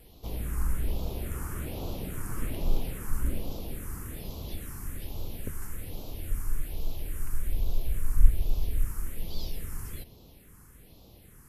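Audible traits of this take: phasing stages 4, 1.2 Hz, lowest notch 600–1700 Hz

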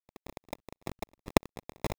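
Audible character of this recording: a quantiser's noise floor 8-bit, dither none; phasing stages 2, 1.6 Hz, lowest notch 180–4300 Hz; aliases and images of a low sample rate 1500 Hz, jitter 0%

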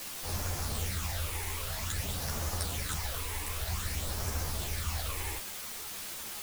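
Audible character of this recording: phasing stages 8, 0.52 Hz, lowest notch 180–3400 Hz; a quantiser's noise floor 6-bit, dither triangular; a shimmering, thickened sound

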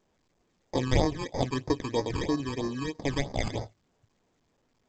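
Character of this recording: aliases and images of a low sample rate 1400 Hz, jitter 0%; phasing stages 12, 3.1 Hz, lowest notch 610–2900 Hz; A-law

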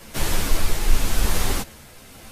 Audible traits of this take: tremolo triangle 0.91 Hz, depth 40%; a shimmering, thickened sound

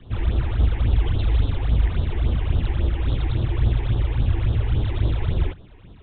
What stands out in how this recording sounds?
phasing stages 8, 3.6 Hz, lowest notch 160–2200 Hz; µ-law

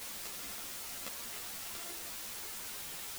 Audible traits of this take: a buzz of ramps at a fixed pitch in blocks of 64 samples; chopped level 2.3 Hz, depth 65%, duty 40%; a quantiser's noise floor 6-bit, dither triangular; a shimmering, thickened sound

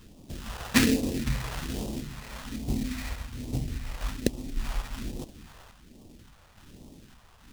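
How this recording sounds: aliases and images of a low sample rate 2200 Hz, jitter 20%; phasing stages 2, 1.2 Hz, lowest notch 250–1500 Hz; random-step tremolo

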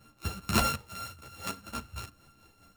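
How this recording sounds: a buzz of ramps at a fixed pitch in blocks of 32 samples; tremolo triangle 5 Hz, depth 60%; a shimmering, thickened sound

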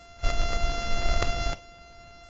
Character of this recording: a buzz of ramps at a fixed pitch in blocks of 64 samples; AAC

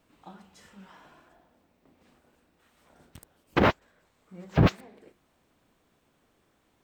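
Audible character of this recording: noise floor -70 dBFS; spectral tilt -5.5 dB/oct

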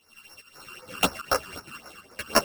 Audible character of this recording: a buzz of ramps at a fixed pitch in blocks of 16 samples; phasing stages 12, 3.9 Hz, lowest notch 610–3300 Hz; tremolo saw up 2.5 Hz, depth 75%; a shimmering, thickened sound

